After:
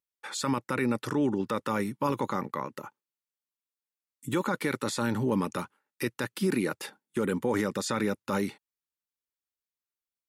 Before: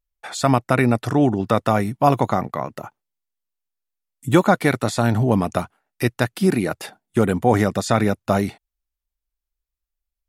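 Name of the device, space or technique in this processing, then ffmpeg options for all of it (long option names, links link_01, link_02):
PA system with an anti-feedback notch: -af "highpass=190,asuperstop=centerf=690:order=4:qfactor=2.9,alimiter=limit=-13dB:level=0:latency=1:release=20,volume=-5dB"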